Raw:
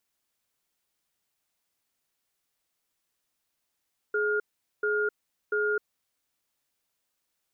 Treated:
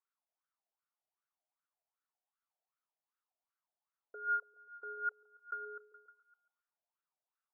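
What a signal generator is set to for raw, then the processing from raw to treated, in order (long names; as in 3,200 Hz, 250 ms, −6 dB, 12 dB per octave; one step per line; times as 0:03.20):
tone pair in a cadence 421 Hz, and 1,420 Hz, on 0.26 s, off 0.43 s, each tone −26.5 dBFS 1.66 s
dynamic equaliser 340 Hz, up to −5 dB, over −41 dBFS, Q 0.76
LFO wah 2.6 Hz 660–1,400 Hz, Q 6.8
echo through a band-pass that steps 140 ms, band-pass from 380 Hz, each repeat 0.7 octaves, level −10 dB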